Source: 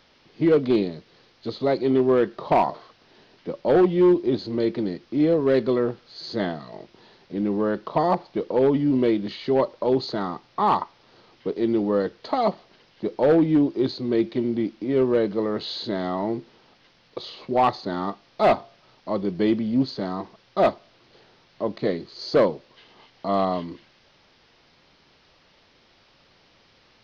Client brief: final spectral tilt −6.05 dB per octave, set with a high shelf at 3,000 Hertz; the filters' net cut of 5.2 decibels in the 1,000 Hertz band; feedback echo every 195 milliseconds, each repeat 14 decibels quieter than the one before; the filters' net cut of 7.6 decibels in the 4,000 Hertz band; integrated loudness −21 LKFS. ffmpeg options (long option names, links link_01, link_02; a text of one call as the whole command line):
ffmpeg -i in.wav -af "equalizer=frequency=1000:width_type=o:gain=-6.5,highshelf=frequency=3000:gain=-7.5,equalizer=frequency=4000:width_type=o:gain=-3,aecho=1:1:195|390:0.2|0.0399,volume=3.5dB" out.wav